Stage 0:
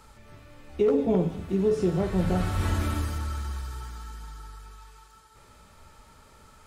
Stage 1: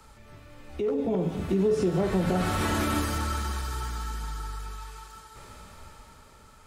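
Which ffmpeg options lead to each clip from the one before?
-filter_complex "[0:a]acrossover=split=160|470|4600[s0][s1][s2][s3];[s0]acompressor=threshold=0.0112:ratio=6[s4];[s4][s1][s2][s3]amix=inputs=4:normalize=0,alimiter=level_in=1.06:limit=0.0631:level=0:latency=1:release=179,volume=0.944,dynaudnorm=f=230:g=9:m=2.51"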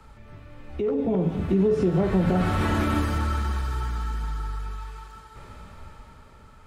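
-af "bass=f=250:g=4,treble=f=4000:g=-10,volume=1.19"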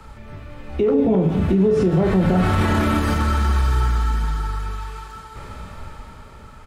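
-filter_complex "[0:a]alimiter=limit=0.119:level=0:latency=1:release=45,asplit=2[s0][s1];[s1]adelay=32,volume=0.282[s2];[s0][s2]amix=inputs=2:normalize=0,volume=2.51"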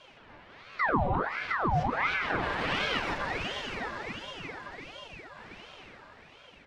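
-filter_complex "[0:a]acrossover=split=260 5500:gain=0.0708 1 0.0794[s0][s1][s2];[s0][s1][s2]amix=inputs=3:normalize=0,bandreject=f=53.04:t=h:w=4,bandreject=f=106.08:t=h:w=4,bandreject=f=159.12:t=h:w=4,bandreject=f=212.16:t=h:w=4,bandreject=f=265.2:t=h:w=4,bandreject=f=318.24:t=h:w=4,bandreject=f=371.28:t=h:w=4,bandreject=f=424.32:t=h:w=4,bandreject=f=477.36:t=h:w=4,bandreject=f=530.4:t=h:w=4,bandreject=f=583.44:t=h:w=4,bandreject=f=636.48:t=h:w=4,bandreject=f=689.52:t=h:w=4,bandreject=f=742.56:t=h:w=4,bandreject=f=795.6:t=h:w=4,bandreject=f=848.64:t=h:w=4,bandreject=f=901.68:t=h:w=4,bandreject=f=954.72:t=h:w=4,bandreject=f=1007.76:t=h:w=4,bandreject=f=1060.8:t=h:w=4,bandreject=f=1113.84:t=h:w=4,bandreject=f=1166.88:t=h:w=4,bandreject=f=1219.92:t=h:w=4,bandreject=f=1272.96:t=h:w=4,bandreject=f=1326:t=h:w=4,bandreject=f=1379.04:t=h:w=4,bandreject=f=1432.08:t=h:w=4,aeval=exprs='val(0)*sin(2*PI*1100*n/s+1100*0.75/1.4*sin(2*PI*1.4*n/s))':c=same,volume=0.631"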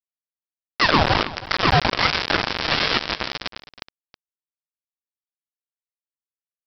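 -af "aexciter=amount=6.8:drive=2.3:freq=4200,aresample=11025,acrusher=bits=3:mix=0:aa=0.000001,aresample=44100,aecho=1:1:320:0.141,volume=2.66"

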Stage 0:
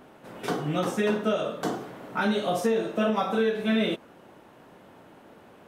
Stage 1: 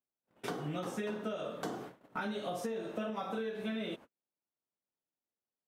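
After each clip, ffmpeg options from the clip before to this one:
-af "agate=range=0.00562:threshold=0.0112:ratio=16:detection=peak,acompressor=threshold=0.0355:ratio=6,volume=0.531"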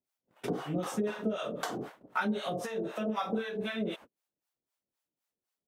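-filter_complex "[0:a]acrossover=split=630[s0][s1];[s0]aeval=exprs='val(0)*(1-1/2+1/2*cos(2*PI*3.9*n/s))':c=same[s2];[s1]aeval=exprs='val(0)*(1-1/2-1/2*cos(2*PI*3.9*n/s))':c=same[s3];[s2][s3]amix=inputs=2:normalize=0,volume=2.82"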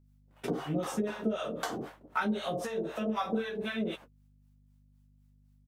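-filter_complex "[0:a]aeval=exprs='val(0)+0.000891*(sin(2*PI*50*n/s)+sin(2*PI*2*50*n/s)/2+sin(2*PI*3*50*n/s)/3+sin(2*PI*4*50*n/s)/4+sin(2*PI*5*50*n/s)/5)':c=same,asplit=2[s0][s1];[s1]adelay=13,volume=0.355[s2];[s0][s2]amix=inputs=2:normalize=0"

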